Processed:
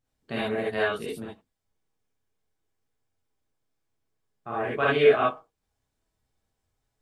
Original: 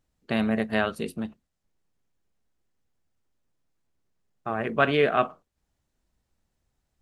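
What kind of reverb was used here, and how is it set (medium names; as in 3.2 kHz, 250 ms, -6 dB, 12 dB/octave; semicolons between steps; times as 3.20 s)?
gated-style reverb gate 90 ms rising, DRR -7.5 dB; trim -8.5 dB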